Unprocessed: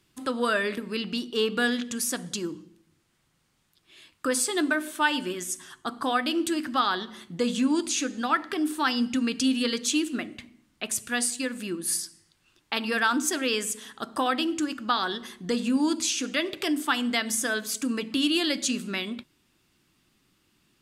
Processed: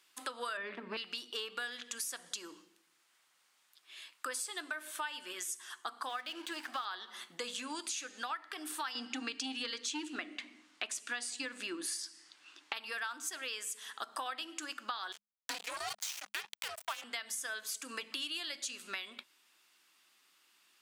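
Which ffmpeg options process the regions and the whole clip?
ffmpeg -i in.wav -filter_complex "[0:a]asettb=1/sr,asplit=3[link_01][link_02][link_03];[link_01]atrim=end=0.574[link_04];[link_02]atrim=start=0.57:end=0.97,asetpts=PTS-STARTPTS,afade=type=in:duration=0.004:curve=qsin,afade=type=out:start_time=0.396:duration=0.004:curve=qsin,equalizer=frequency=180:width=0.73:gain=14,aeval=exprs='clip(val(0),-1,0.133)':channel_layout=same,highpass=130,lowpass=2600[link_05];[link_03]atrim=start=0.966[link_06];[link_04][link_05]acrossfade=duration=0.004:curve1=hsin:curve2=qsin[link_07];[link_07][link_06]acrossfade=duration=0.004:curve1=qsin:curve2=hsin,asettb=1/sr,asplit=3[link_08][link_09][link_10];[link_08]atrim=end=6.094[link_11];[link_09]atrim=start=6.09:end=6.85,asetpts=PTS-STARTPTS,afade=type=in:duration=0.004:curve=qsin,afade=type=out:start_time=0.756:duration=0.004:curve=qsin,highpass=frequency=130:width=0.5412,highpass=frequency=130:width=1.3066,acrossover=split=4500[link_12][link_13];[link_13]acompressor=threshold=-47dB:ratio=4:attack=1:release=60[link_14];[link_12][link_14]amix=inputs=2:normalize=0,aeval=exprs='sgn(val(0))*max(abs(val(0))-0.00708,0)':channel_layout=same[link_15];[link_10]atrim=start=6.846[link_16];[link_11][link_15]acrossfade=duration=0.004:curve1=hsin:curve2=qsin[link_17];[link_17][link_16]acrossfade=duration=0.004:curve1=qsin:curve2=hsin,asettb=1/sr,asplit=3[link_18][link_19][link_20];[link_18]atrim=end=8.954[link_21];[link_19]atrim=start=8.95:end=12.73,asetpts=PTS-STARTPTS,afade=type=in:duration=0.004:curve=qsin,afade=type=out:start_time=3.776:duration=0.004:curve=qsin,lowpass=6600,equalizer=frequency=290:width_type=o:width=0.37:gain=14.5,acontrast=72[link_22];[link_20]atrim=start=12.726[link_23];[link_21][link_22]acrossfade=duration=0.004:curve1=hsin:curve2=qsin[link_24];[link_24][link_23]acrossfade=duration=0.004:curve1=qsin:curve2=hsin,asettb=1/sr,asplit=3[link_25][link_26][link_27];[link_25]atrim=end=15.124[link_28];[link_26]atrim=start=15.12:end=17.04,asetpts=PTS-STARTPTS,afade=type=in:duration=0.004:curve=qsin,afade=type=out:start_time=1.916:duration=0.004:curve=qsin,acrusher=bits=3:mix=0:aa=0.5,afreqshift=-210[link_29];[link_27]atrim=start=17.036[link_30];[link_28][link_29]acrossfade=duration=0.004:curve1=hsin:curve2=qsin[link_31];[link_31][link_30]acrossfade=duration=0.004:curve1=qsin:curve2=hsin,highpass=820,acompressor=threshold=-39dB:ratio=6,volume=1.5dB" out.wav

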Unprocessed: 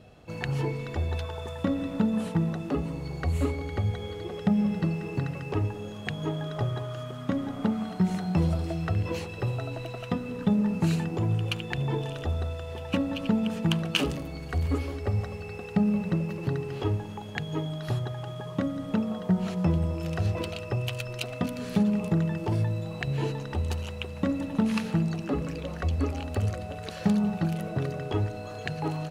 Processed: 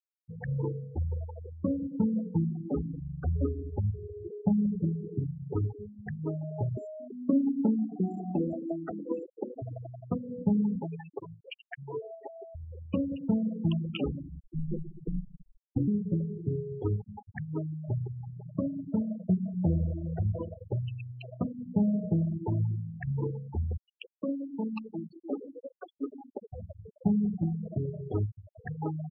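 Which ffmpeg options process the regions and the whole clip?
ffmpeg -i in.wav -filter_complex "[0:a]asettb=1/sr,asplit=3[link_01][link_02][link_03];[link_01]atrim=end=6.774[link_04];[link_02]atrim=start=6.77:end=9.62,asetpts=PTS-STARTPTS,afade=type=in:duration=0.004:curve=qsin,afade=type=out:start_time=2.846:duration=0.004:curve=qsin,lowshelf=frequency=170:width_type=q:width=3:gain=-14,aeval=exprs='val(0)+0.0112*sin(2*PI*7300*n/s)':channel_layout=same,asplit=2[link_05][link_06];[link_06]adelay=108,lowpass=frequency=2200:poles=1,volume=-16.5dB,asplit=2[link_07][link_08];[link_08]adelay=108,lowpass=frequency=2200:poles=1,volume=0.46,asplit=2[link_09][link_10];[link_10]adelay=108,lowpass=frequency=2200:poles=1,volume=0.46,asplit=2[link_11][link_12];[link_12]adelay=108,lowpass=frequency=2200:poles=1,volume=0.46[link_13];[link_05][link_07][link_09][link_11][link_13]amix=inputs=5:normalize=0,atrim=end_sample=125685[link_14];[link_03]atrim=start=9.616[link_15];[link_04][link_14]acrossfade=duration=0.004:curve1=hsin:curve2=qsin[link_16];[link_16][link_15]acrossfade=duration=0.004:curve1=qsin:curve2=hsin,asettb=1/sr,asplit=3[link_17][link_18][link_19];[link_17]atrim=end=10.824[link_20];[link_18]atrim=start=10.82:end=12.55,asetpts=PTS-STARTPTS,afade=type=in:duration=0.004:curve=qsin,afade=type=out:start_time=1.726:duration=0.004:curve=qsin,highpass=370,lowpass=5200,aecho=1:1:7.3:0.84,atrim=end_sample=76293[link_21];[link_19]atrim=start=12.546[link_22];[link_20][link_21]acrossfade=duration=0.004:curve1=hsin:curve2=qsin[link_23];[link_23][link_22]acrossfade=duration=0.004:curve1=qsin:curve2=hsin,asettb=1/sr,asplit=3[link_24][link_25][link_26];[link_24]atrim=end=14.404[link_27];[link_25]atrim=start=14.4:end=15.88,asetpts=PTS-STARTPTS,afade=type=in:duration=0.004:curve=qsin,afade=type=out:start_time=1.476:duration=0.004:curve=qsin,lowpass=3700,equalizer=frequency=2000:width_type=o:width=1.1:gain=-12.5,aeval=exprs='val(0)*sin(2*PI*76*n/s)':channel_layout=same[link_28];[link_26]atrim=start=15.876[link_29];[link_27][link_28]acrossfade=duration=0.004:curve1=hsin:curve2=qsin[link_30];[link_30][link_29]acrossfade=duration=0.004:curve1=qsin:curve2=hsin,asettb=1/sr,asplit=3[link_31][link_32][link_33];[link_31]atrim=end=23.774[link_34];[link_32]atrim=start=23.77:end=26.53,asetpts=PTS-STARTPTS,afade=type=in:duration=0.004:curve=qsin,afade=type=out:start_time=2.756:duration=0.004:curve=qsin,highpass=frequency=250:width=0.5412,highpass=frequency=250:width=1.3066,highshelf=frequency=2600:width_type=q:width=1.5:gain=6.5,bandreject=frequency=60:width_type=h:width=6,bandreject=frequency=120:width_type=h:width=6,bandreject=frequency=180:width_type=h:width=6,bandreject=frequency=240:width_type=h:width=6,bandreject=frequency=300:width_type=h:width=6,bandreject=frequency=360:width_type=h:width=6,bandreject=frequency=420:width_type=h:width=6,bandreject=frequency=480:width_type=h:width=6[link_35];[link_33]atrim=start=26.526[link_36];[link_34][link_35]acrossfade=duration=0.004:curve1=hsin:curve2=qsin[link_37];[link_37][link_36]acrossfade=duration=0.004:curve1=qsin:curve2=hsin,afftfilt=real='re*gte(hypot(re,im),0.0891)':imag='im*gte(hypot(re,im),0.0891)':win_size=1024:overlap=0.75,lowpass=1600,volume=-2dB" out.wav

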